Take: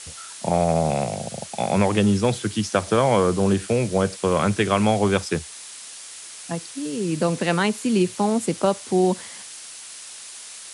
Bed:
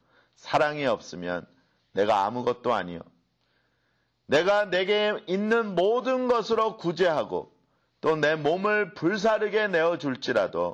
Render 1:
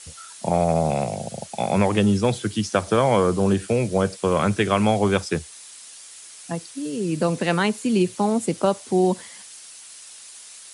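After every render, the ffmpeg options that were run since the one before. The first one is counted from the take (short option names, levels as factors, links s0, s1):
-af "afftdn=nr=6:nf=-40"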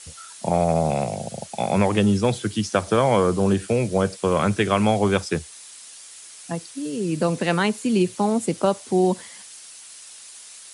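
-af anull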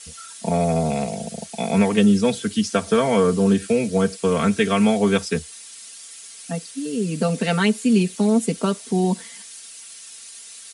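-af "equalizer=f=870:w=1.1:g=-5.5,aecho=1:1:4.4:0.87"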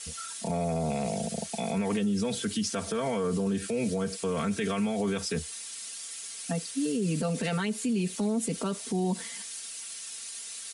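-af "acompressor=threshold=0.112:ratio=6,alimiter=limit=0.0841:level=0:latency=1:release=24"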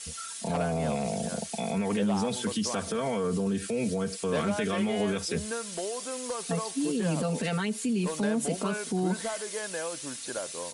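-filter_complex "[1:a]volume=0.251[s0];[0:a][s0]amix=inputs=2:normalize=0"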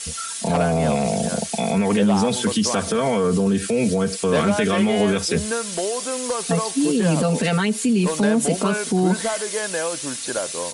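-af "volume=2.99"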